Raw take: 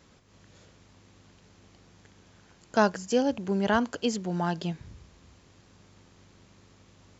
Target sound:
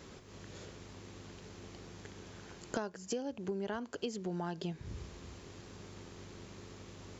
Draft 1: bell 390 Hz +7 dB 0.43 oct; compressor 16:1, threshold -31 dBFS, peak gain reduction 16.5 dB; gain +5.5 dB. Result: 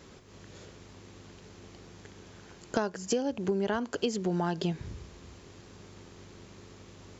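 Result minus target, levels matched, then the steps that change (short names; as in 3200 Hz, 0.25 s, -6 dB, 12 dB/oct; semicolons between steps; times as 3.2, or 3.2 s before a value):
compressor: peak gain reduction -8.5 dB
change: compressor 16:1, threshold -40 dBFS, peak gain reduction 25 dB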